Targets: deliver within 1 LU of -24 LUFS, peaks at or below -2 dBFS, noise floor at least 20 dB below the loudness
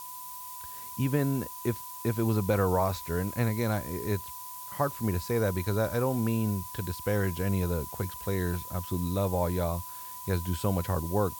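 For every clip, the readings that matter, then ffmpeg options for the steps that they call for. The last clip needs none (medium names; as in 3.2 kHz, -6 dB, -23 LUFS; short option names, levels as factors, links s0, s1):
steady tone 1 kHz; tone level -43 dBFS; noise floor -42 dBFS; noise floor target -51 dBFS; loudness -30.5 LUFS; peak level -13.0 dBFS; loudness target -24.0 LUFS
-> -af "bandreject=f=1000:w=30"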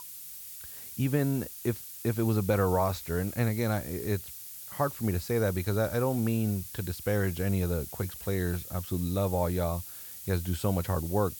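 steady tone not found; noise floor -44 dBFS; noise floor target -51 dBFS
-> -af "afftdn=nr=7:nf=-44"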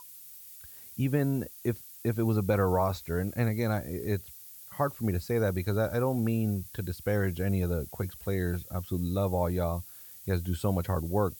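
noise floor -49 dBFS; noise floor target -51 dBFS
-> -af "afftdn=nr=6:nf=-49"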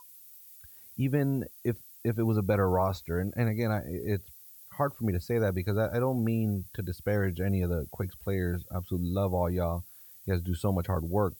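noise floor -52 dBFS; loudness -30.5 LUFS; peak level -14.0 dBFS; loudness target -24.0 LUFS
-> -af "volume=2.11"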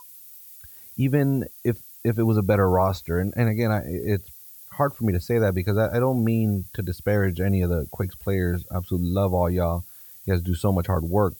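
loudness -24.0 LUFS; peak level -7.5 dBFS; noise floor -46 dBFS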